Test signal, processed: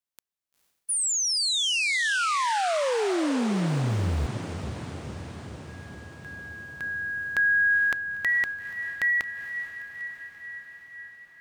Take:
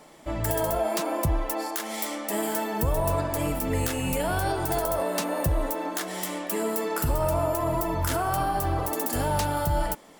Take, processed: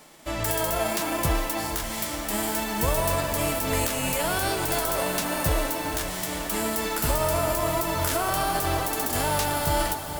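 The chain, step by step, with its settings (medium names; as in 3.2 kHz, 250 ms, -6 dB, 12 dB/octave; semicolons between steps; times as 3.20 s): formants flattened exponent 0.6; echo that smears into a reverb 460 ms, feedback 70%, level -10 dB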